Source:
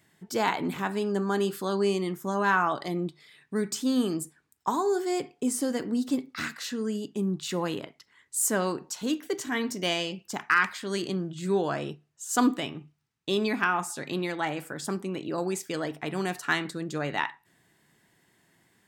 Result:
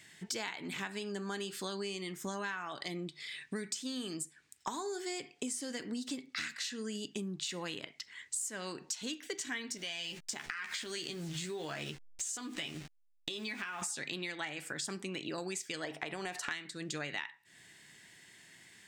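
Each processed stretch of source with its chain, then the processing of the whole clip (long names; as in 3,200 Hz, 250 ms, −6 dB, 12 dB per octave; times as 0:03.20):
0:09.77–0:13.82: hold until the input has moved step −46.5 dBFS + double-tracking delay 13 ms −5.5 dB + downward compressor 5 to 1, threshold −36 dBFS
0:15.84–0:16.51: parametric band 720 Hz +11 dB 1.9 octaves + downward compressor, threshold −24 dBFS
whole clip: flat-topped bell 3,900 Hz +11.5 dB 2.7 octaves; downward compressor 12 to 1, threshold −36 dBFS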